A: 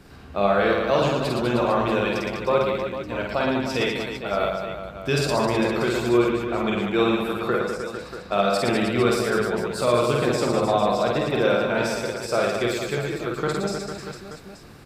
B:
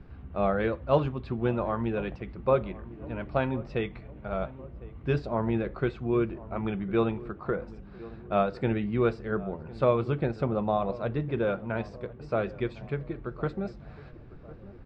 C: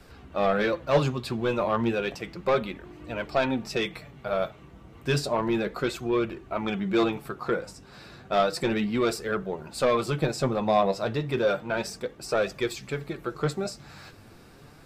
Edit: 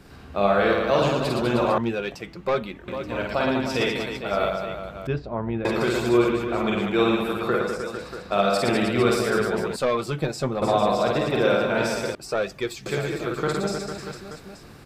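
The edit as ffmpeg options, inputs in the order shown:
-filter_complex "[2:a]asplit=3[a][b][c];[0:a]asplit=5[d][e][f][g][h];[d]atrim=end=1.782[i];[a]atrim=start=1.778:end=2.882[j];[e]atrim=start=2.878:end=5.072[k];[1:a]atrim=start=5.068:end=5.652[l];[f]atrim=start=5.648:end=9.762[m];[b]atrim=start=9.758:end=10.622[n];[g]atrim=start=10.618:end=12.152[o];[c]atrim=start=12.148:end=12.862[p];[h]atrim=start=12.858[q];[i][j]acrossfade=d=0.004:c1=hsin:c2=hsin[r];[r][k]acrossfade=d=0.004:c1=hsin:c2=hsin[s];[s][l]acrossfade=d=0.004:c1=hsin:c2=hsin[t];[t][m]acrossfade=d=0.004:c1=hsin:c2=hsin[u];[u][n]acrossfade=d=0.004:c1=hsin:c2=hsin[v];[v][o]acrossfade=d=0.004:c1=hsin:c2=hsin[w];[w][p]acrossfade=d=0.004:c1=hsin:c2=hsin[x];[x][q]acrossfade=d=0.004:c1=hsin:c2=hsin"

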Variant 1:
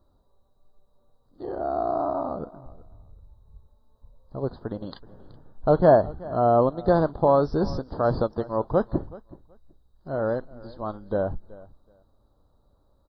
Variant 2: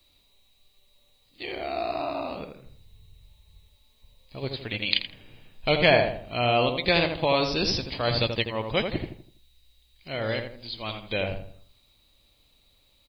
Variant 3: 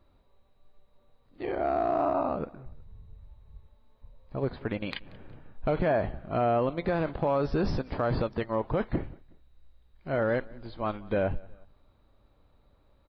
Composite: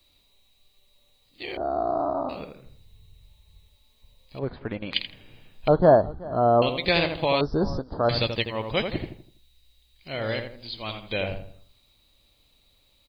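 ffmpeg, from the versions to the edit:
-filter_complex "[0:a]asplit=3[a][b][c];[1:a]asplit=5[d][e][f][g][h];[d]atrim=end=1.572[i];[a]atrim=start=1.568:end=2.292[j];[e]atrim=start=2.288:end=4.392[k];[2:a]atrim=start=4.388:end=4.942[l];[f]atrim=start=4.938:end=5.682[m];[b]atrim=start=5.678:end=6.622[n];[g]atrim=start=6.618:end=7.412[o];[c]atrim=start=7.408:end=8.092[p];[h]atrim=start=8.088[q];[i][j]acrossfade=d=0.004:c1=hsin:c2=hsin[r];[r][k]acrossfade=d=0.004:c1=hsin:c2=hsin[s];[s][l]acrossfade=d=0.004:c1=hsin:c2=hsin[t];[t][m]acrossfade=d=0.004:c1=hsin:c2=hsin[u];[u][n]acrossfade=d=0.004:c1=hsin:c2=hsin[v];[v][o]acrossfade=d=0.004:c1=hsin:c2=hsin[w];[w][p]acrossfade=d=0.004:c1=hsin:c2=hsin[x];[x][q]acrossfade=d=0.004:c1=hsin:c2=hsin"

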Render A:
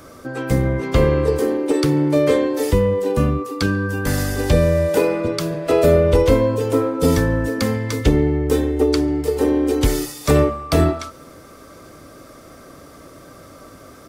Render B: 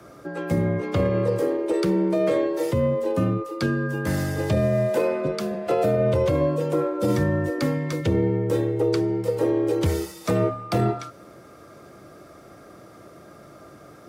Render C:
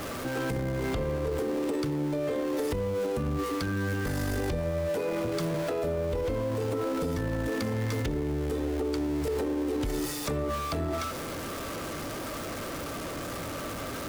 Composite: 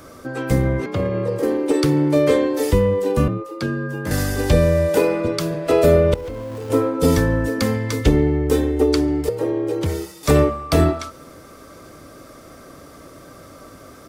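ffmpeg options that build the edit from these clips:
-filter_complex "[1:a]asplit=3[a][b][c];[0:a]asplit=5[d][e][f][g][h];[d]atrim=end=0.862[i];[a]atrim=start=0.858:end=1.432[j];[e]atrim=start=1.428:end=3.282[k];[b]atrim=start=3.278:end=4.112[l];[f]atrim=start=4.108:end=6.142[m];[2:a]atrim=start=6.138:end=6.702[n];[g]atrim=start=6.698:end=9.292[o];[c]atrim=start=9.288:end=10.232[p];[h]atrim=start=10.228[q];[i][j]acrossfade=d=0.004:c1=hsin:c2=hsin[r];[r][k]acrossfade=d=0.004:c1=hsin:c2=hsin[s];[s][l]acrossfade=d=0.004:c1=hsin:c2=hsin[t];[t][m]acrossfade=d=0.004:c1=hsin:c2=hsin[u];[u][n]acrossfade=d=0.004:c1=hsin:c2=hsin[v];[v][o]acrossfade=d=0.004:c1=hsin:c2=hsin[w];[w][p]acrossfade=d=0.004:c1=hsin:c2=hsin[x];[x][q]acrossfade=d=0.004:c1=hsin:c2=hsin"

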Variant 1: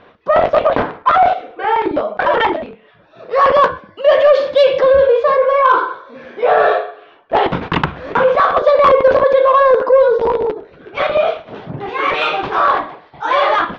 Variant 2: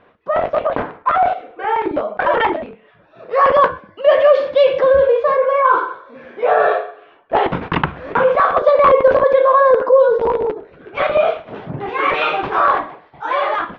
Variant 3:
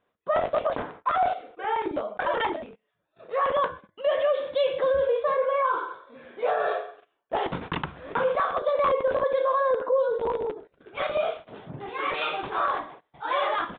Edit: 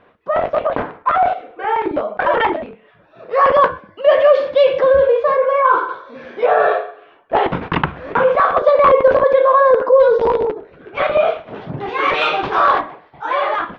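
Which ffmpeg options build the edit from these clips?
-filter_complex "[0:a]asplit=3[a][b][c];[1:a]asplit=4[d][e][f][g];[d]atrim=end=5.892[h];[a]atrim=start=5.888:end=6.462[i];[e]atrim=start=6.458:end=10.002[j];[b]atrim=start=9.998:end=10.452[k];[f]atrim=start=10.448:end=11.612[l];[c]atrim=start=11.608:end=12.812[m];[g]atrim=start=12.808[n];[h][i]acrossfade=d=0.004:c1=hsin:c2=hsin[o];[o][j]acrossfade=d=0.004:c1=hsin:c2=hsin[p];[p][k]acrossfade=d=0.004:c1=hsin:c2=hsin[q];[q][l]acrossfade=d=0.004:c1=hsin:c2=hsin[r];[r][m]acrossfade=d=0.004:c1=hsin:c2=hsin[s];[s][n]acrossfade=d=0.004:c1=hsin:c2=hsin"

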